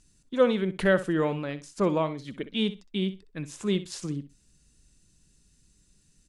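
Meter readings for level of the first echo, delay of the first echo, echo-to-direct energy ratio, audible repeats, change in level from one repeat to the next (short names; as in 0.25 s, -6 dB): -14.0 dB, 63 ms, -14.0 dB, 2, -15.0 dB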